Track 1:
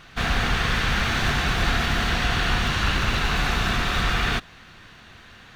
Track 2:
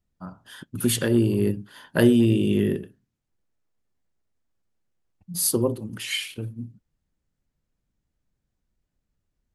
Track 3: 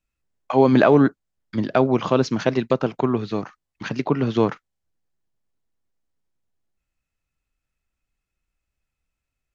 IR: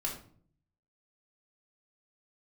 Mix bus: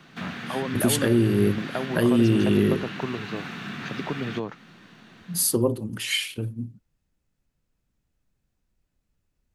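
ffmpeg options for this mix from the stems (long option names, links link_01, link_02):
-filter_complex "[0:a]acrossover=split=400|1400|2900[link_01][link_02][link_03][link_04];[link_01]acompressor=threshold=-32dB:ratio=4[link_05];[link_02]acompressor=threshold=-46dB:ratio=4[link_06];[link_03]acompressor=threshold=-33dB:ratio=4[link_07];[link_04]acompressor=threshold=-46dB:ratio=4[link_08];[link_05][link_06][link_07][link_08]amix=inputs=4:normalize=0,highpass=frequency=150:width=0.5412,highpass=frequency=150:width=1.3066,equalizer=frequency=190:width_type=o:width=2.2:gain=11,volume=-6dB[link_09];[1:a]volume=2.5dB[link_10];[2:a]acompressor=threshold=-18dB:ratio=6,volume=-7.5dB[link_11];[link_09][link_10]amix=inputs=2:normalize=0,alimiter=limit=-10.5dB:level=0:latency=1:release=318,volume=0dB[link_12];[link_11][link_12]amix=inputs=2:normalize=0"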